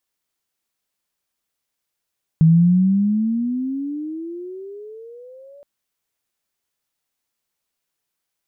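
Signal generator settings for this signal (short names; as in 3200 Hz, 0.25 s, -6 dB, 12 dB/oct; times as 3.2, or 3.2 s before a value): gliding synth tone sine, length 3.22 s, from 158 Hz, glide +22.5 st, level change -33 dB, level -8 dB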